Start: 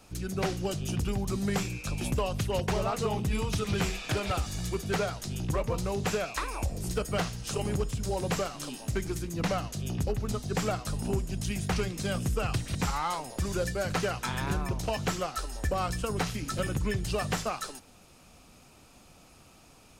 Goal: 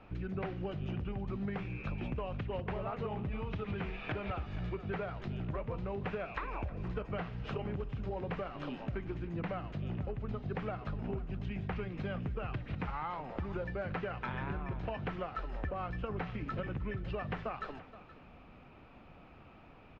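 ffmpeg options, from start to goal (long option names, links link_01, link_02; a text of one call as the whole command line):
ffmpeg -i in.wav -af "lowpass=frequency=2600:width=0.5412,lowpass=frequency=2600:width=1.3066,acompressor=threshold=-36dB:ratio=6,aecho=1:1:311|474:0.106|0.141,volume=1dB" out.wav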